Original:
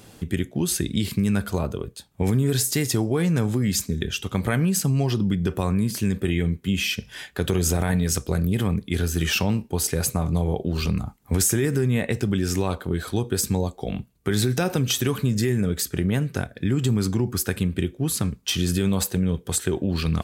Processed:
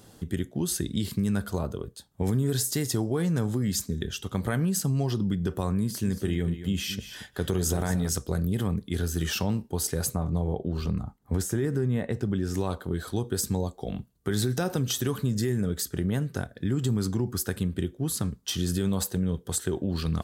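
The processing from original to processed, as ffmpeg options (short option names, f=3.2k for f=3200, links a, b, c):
-filter_complex "[0:a]asettb=1/sr,asplit=3[a][b][c];[a]atrim=end=5.824[d];[b]atrim=start=5.82:end=8.09,asetpts=PTS-STARTPTS,afade=t=in:d=0.004:c=qsin,afade=t=out:st=2.266:d=0.004:c=qsin,aecho=1:1:228:0.266,atrim=end_sample=100107[e];[c]atrim=start=8.086[f];[d][e]acrossfade=d=0.004:c1=hsin:c2=qsin[g];[g][f]acrossfade=d=0.004:c1=qsin:c2=hsin,asettb=1/sr,asplit=3[h][i][j];[h]atrim=end=10.154[k];[i]atrim=start=10.15:end=12.54,asetpts=PTS-STARTPTS,afade=t=in:d=0.004:c=qsin,afade=t=out:st=2.386:d=0.004:c=qsin,highshelf=f=3.1k:g=-10[l];[j]atrim=start=12.536[m];[k][l]acrossfade=d=0.004:c1=hsin:c2=qsin[n];[n][m]acrossfade=d=0.004:c1=qsin:c2=hsin,equalizer=f=2.4k:t=o:w=0.44:g=-9,volume=-4.5dB"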